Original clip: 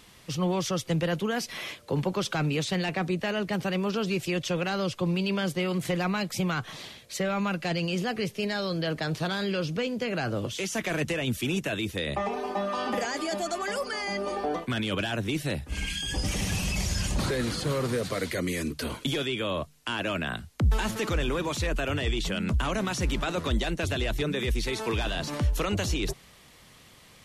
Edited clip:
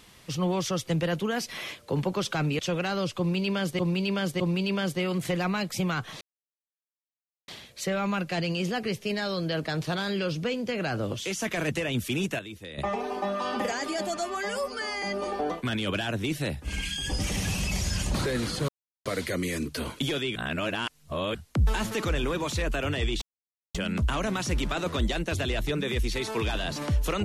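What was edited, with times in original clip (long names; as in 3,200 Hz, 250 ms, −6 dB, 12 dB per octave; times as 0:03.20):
0:02.59–0:04.41: remove
0:05.00–0:05.61: repeat, 3 plays
0:06.81: splice in silence 1.27 s
0:11.72–0:12.11: clip gain −10.5 dB
0:13.50–0:14.07: time-stretch 1.5×
0:17.73–0:18.10: silence
0:19.40–0:20.39: reverse
0:22.26: splice in silence 0.53 s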